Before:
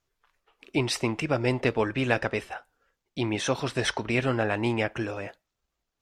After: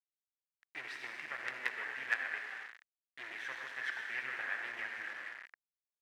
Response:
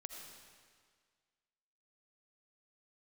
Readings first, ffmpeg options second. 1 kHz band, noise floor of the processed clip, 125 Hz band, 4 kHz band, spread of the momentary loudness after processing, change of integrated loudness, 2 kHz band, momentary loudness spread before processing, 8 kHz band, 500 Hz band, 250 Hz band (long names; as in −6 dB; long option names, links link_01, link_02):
−15.0 dB, below −85 dBFS, below −40 dB, −16.0 dB, 14 LU, −12.0 dB, −4.5 dB, 10 LU, −22.0 dB, −27.5 dB, −34.0 dB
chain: -filter_complex "[1:a]atrim=start_sample=2205,asetrate=52920,aresample=44100[link_01];[0:a][link_01]afir=irnorm=-1:irlink=0,acrusher=bits=4:dc=4:mix=0:aa=0.000001,bandpass=frequency=1800:width_type=q:width=5.7:csg=0,volume=9dB"